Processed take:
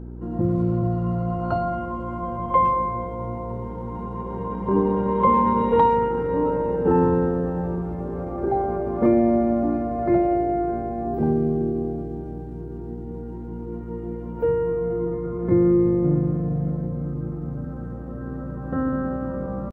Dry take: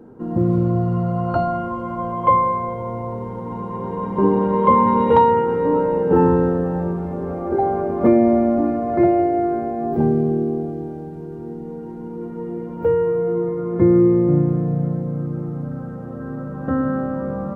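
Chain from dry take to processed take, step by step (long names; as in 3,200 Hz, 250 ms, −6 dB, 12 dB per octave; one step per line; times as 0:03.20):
hum with harmonics 60 Hz, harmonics 6, −32 dBFS −5 dB per octave
tempo change 0.89×
far-end echo of a speakerphone 100 ms, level −22 dB
level −4 dB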